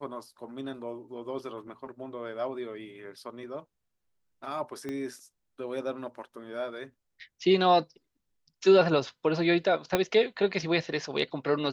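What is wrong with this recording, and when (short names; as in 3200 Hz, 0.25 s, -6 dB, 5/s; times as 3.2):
4.89 pop -23 dBFS
9.95 pop -9 dBFS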